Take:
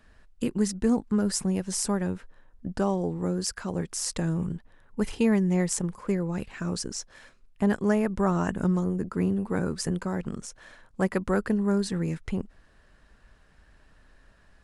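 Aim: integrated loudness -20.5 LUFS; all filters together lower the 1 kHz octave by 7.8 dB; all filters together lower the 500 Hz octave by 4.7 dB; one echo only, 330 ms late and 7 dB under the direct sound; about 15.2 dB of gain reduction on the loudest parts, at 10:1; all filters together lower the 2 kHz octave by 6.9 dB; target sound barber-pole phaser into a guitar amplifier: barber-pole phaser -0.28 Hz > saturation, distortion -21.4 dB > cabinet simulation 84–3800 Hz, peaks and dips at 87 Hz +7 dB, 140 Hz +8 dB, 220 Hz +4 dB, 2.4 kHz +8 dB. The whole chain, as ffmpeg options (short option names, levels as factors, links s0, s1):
-filter_complex "[0:a]equalizer=f=500:t=o:g=-5,equalizer=f=1000:t=o:g=-6.5,equalizer=f=2000:t=o:g=-9,acompressor=threshold=0.0141:ratio=10,aecho=1:1:330:0.447,asplit=2[s0][s1];[s1]afreqshift=-0.28[s2];[s0][s2]amix=inputs=2:normalize=1,asoftclip=threshold=0.0237,highpass=84,equalizer=f=87:t=q:w=4:g=7,equalizer=f=140:t=q:w=4:g=8,equalizer=f=220:t=q:w=4:g=4,equalizer=f=2400:t=q:w=4:g=8,lowpass=f=3800:w=0.5412,lowpass=f=3800:w=1.3066,volume=11.9"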